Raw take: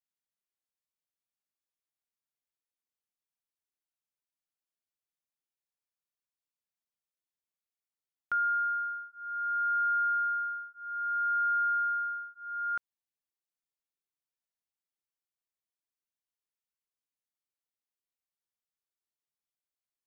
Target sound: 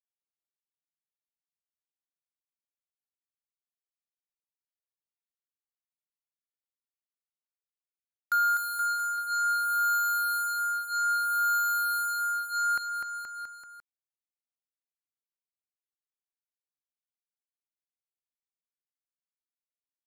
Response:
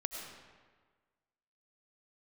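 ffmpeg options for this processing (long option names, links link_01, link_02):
-af "agate=range=-33dB:threshold=-37dB:ratio=3:detection=peak,acrusher=bits=5:mix=0:aa=0.5,aecho=1:1:250|475|677.5|859.8|1024:0.631|0.398|0.251|0.158|0.1,volume=3.5dB"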